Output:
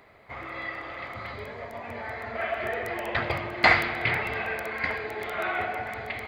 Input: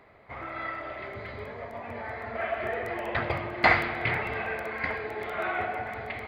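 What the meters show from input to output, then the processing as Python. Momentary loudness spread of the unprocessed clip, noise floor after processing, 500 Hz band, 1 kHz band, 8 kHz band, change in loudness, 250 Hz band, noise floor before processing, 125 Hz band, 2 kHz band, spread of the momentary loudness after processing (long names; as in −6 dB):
15 LU, −42 dBFS, 0.0 dB, +0.5 dB, can't be measured, +2.0 dB, 0.0 dB, −44 dBFS, 0.0 dB, +2.5 dB, 16 LU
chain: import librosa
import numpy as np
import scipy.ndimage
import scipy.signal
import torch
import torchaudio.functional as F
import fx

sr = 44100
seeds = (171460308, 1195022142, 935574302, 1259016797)

y = fx.spec_repair(x, sr, seeds[0], start_s=0.44, length_s=0.88, low_hz=350.0, high_hz=1600.0, source='before')
y = fx.high_shelf(y, sr, hz=3300.0, db=9.5)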